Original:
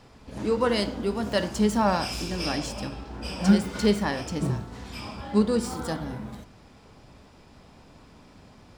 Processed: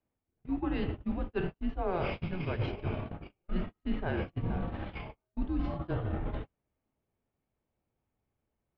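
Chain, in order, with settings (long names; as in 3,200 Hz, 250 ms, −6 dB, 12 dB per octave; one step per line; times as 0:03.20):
single-sideband voice off tune −180 Hz 240–3,300 Hz
low-shelf EQ 470 Hz +8.5 dB
hum removal 96.07 Hz, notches 36
reversed playback
downward compressor 8 to 1, threshold −37 dBFS, peak gain reduction 24.5 dB
reversed playback
noise gate −40 dBFS, range −41 dB
level +7 dB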